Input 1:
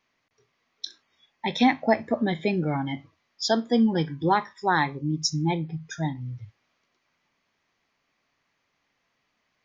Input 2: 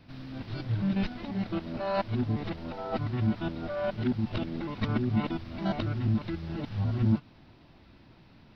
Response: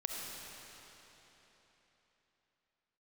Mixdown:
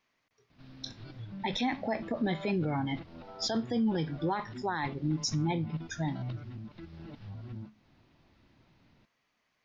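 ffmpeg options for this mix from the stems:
-filter_complex "[0:a]volume=-3dB[link_01];[1:a]acompressor=threshold=-34dB:ratio=2.5,flanger=delay=4.6:depth=3.8:regen=-85:speed=0.32:shape=triangular,adelay=500,volume=-4.5dB[link_02];[link_01][link_02]amix=inputs=2:normalize=0,alimiter=limit=-22.5dB:level=0:latency=1:release=14"

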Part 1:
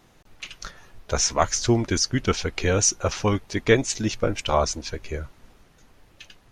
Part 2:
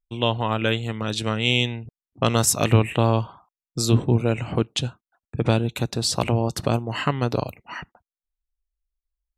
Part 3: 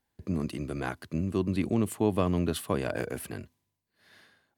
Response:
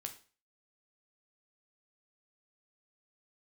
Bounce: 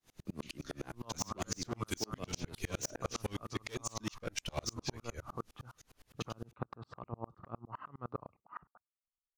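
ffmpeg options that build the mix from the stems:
-filter_complex "[0:a]highshelf=frequency=3000:gain=11,volume=18dB,asoftclip=hard,volume=-18dB,volume=-2.5dB[link_01];[1:a]lowpass=frequency=1200:width_type=q:width=8.6,acompressor=threshold=-17dB:ratio=6,adelay=800,volume=-8.5dB[link_02];[2:a]volume=-1.5dB[link_03];[link_01][link_02][link_03]amix=inputs=3:normalize=0,acrossover=split=720|2900[link_04][link_05][link_06];[link_04]acompressor=threshold=-31dB:ratio=4[link_07];[link_05]acompressor=threshold=-39dB:ratio=4[link_08];[link_06]acompressor=threshold=-34dB:ratio=4[link_09];[link_07][link_08][link_09]amix=inputs=3:normalize=0,aeval=exprs='val(0)*pow(10,-37*if(lt(mod(-9.8*n/s,1),2*abs(-9.8)/1000),1-mod(-9.8*n/s,1)/(2*abs(-9.8)/1000),(mod(-9.8*n/s,1)-2*abs(-9.8)/1000)/(1-2*abs(-9.8)/1000))/20)':channel_layout=same"

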